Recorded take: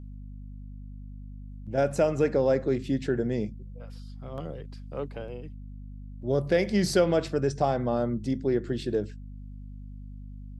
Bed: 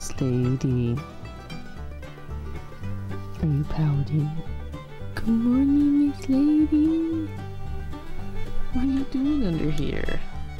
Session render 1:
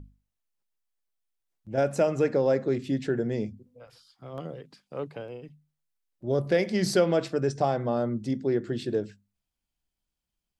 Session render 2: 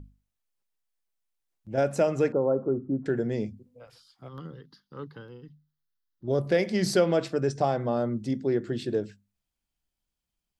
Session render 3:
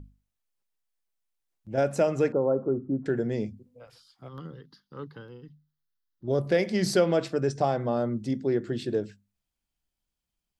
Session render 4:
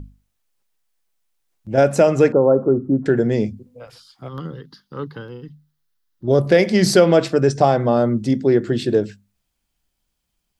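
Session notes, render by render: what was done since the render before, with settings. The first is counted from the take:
notches 50/100/150/200/250 Hz
2.32–3.06 rippled Chebyshev low-pass 1400 Hz, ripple 3 dB; 4.28–6.28 fixed phaser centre 2400 Hz, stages 6
nothing audible
gain +10.5 dB; limiter -3 dBFS, peak gain reduction 1.5 dB

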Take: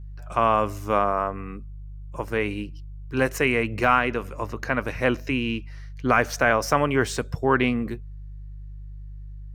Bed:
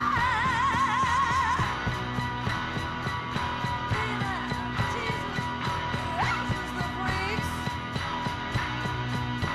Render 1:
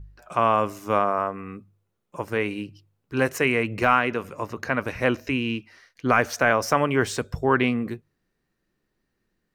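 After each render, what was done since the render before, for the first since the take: de-hum 50 Hz, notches 3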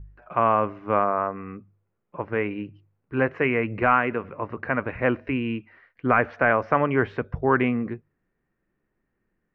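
inverse Chebyshev low-pass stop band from 11000 Hz, stop band 80 dB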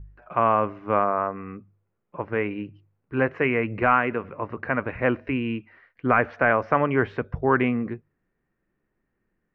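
nothing audible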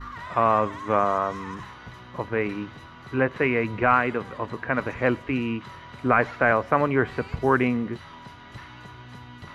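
add bed -13 dB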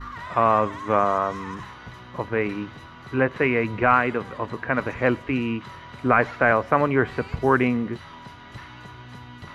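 gain +1.5 dB

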